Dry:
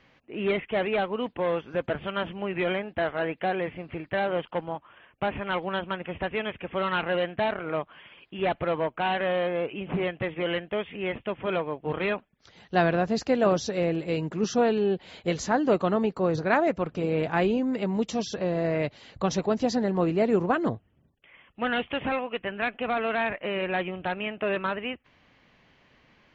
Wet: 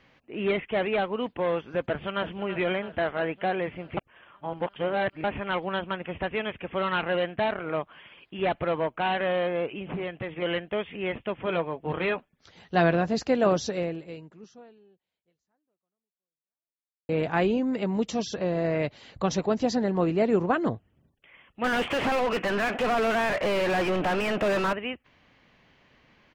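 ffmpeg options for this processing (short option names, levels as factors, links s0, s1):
-filter_complex "[0:a]asplit=2[s0][s1];[s1]afade=t=in:st=1.85:d=0.01,afade=t=out:st=2.3:d=0.01,aecho=0:1:330|660|990|1320|1650|1980|2310|2640:0.237137|0.154139|0.100191|0.0651239|0.0423305|0.0275148|0.0178846|0.011625[s2];[s0][s2]amix=inputs=2:normalize=0,asettb=1/sr,asplit=3[s3][s4][s5];[s3]atrim=end=9.704[s6];[s4]atrim=start=9.7:end=10.42,asetpts=PTS-STARTPTS,afade=t=in:d=0.004:c=qsin,afade=t=out:st=0.716:d=0.004:c=qsin,acompressor=threshold=0.0251:ratio=2:attack=3.2:release=140:knee=1:detection=peak[s7];[s5]atrim=start=10.416[s8];[s6][s7]acrossfade=d=0.004:c1=hsin:c2=qsin[s9];[s9][s8]acrossfade=d=0.004:c1=qsin:c2=hsin,asettb=1/sr,asplit=3[s10][s11][s12];[s10]atrim=end=11.484[s13];[s11]atrim=start=11.48:end=13.14,asetpts=PTS-STARTPTS,afade=t=in:d=0.004:c=qsin,afade=t=out:st=1.656:d=0.004:c=qsin,asplit=2[s14][s15];[s15]adelay=12,volume=0.299[s16];[s14][s16]amix=inputs=2:normalize=0,atrim=end_sample=73206[s17];[s12]atrim=start=13.136[s18];[s13][s17]acrossfade=d=0.004:c1=hsin:c2=qsin[s19];[s19][s18]acrossfade=d=0.004:c1=qsin:c2=hsin,asettb=1/sr,asplit=3[s20][s21][s22];[s20]atrim=end=21.644[s23];[s21]atrim=start=21.64:end=24.73,asetpts=PTS-STARTPTS,afade=t=in:d=0.004:c=qsin,afade=t=out:st=3.086:d=0.004:c=qsin,asplit=2[s24][s25];[s25]highpass=f=720:p=1,volume=63.1,asoftclip=type=tanh:threshold=0.141[s26];[s24][s26]amix=inputs=2:normalize=0,lowpass=f=1100:p=1,volume=0.501[s27];[s22]atrim=start=24.726[s28];[s23][s27]acrossfade=d=0.004:c1=hsin:c2=qsin[s29];[s29][s28]acrossfade=d=0.004:c1=qsin:c2=hsin,asplit=4[s30][s31][s32][s33];[s30]atrim=end=3.972[s34];[s31]atrim=start=3.968:end=5.242,asetpts=PTS-STARTPTS,areverse[s35];[s32]atrim=start=5.238:end=17.09,asetpts=PTS-STARTPTS,afade=t=out:st=8.472:d=3.38:c=exp[s36];[s33]atrim=start=17.09,asetpts=PTS-STARTPTS,afade=t=in:d=0.004:c=hsin[s37];[s34][s35]acrossfade=d=0.004:c1=hsin:c2=hsin[s38];[s36][s37]concat=n=2:v=0:a=1[s39];[s38][s39]acrossfade=d=0.004:c1=hsin:c2=hsin"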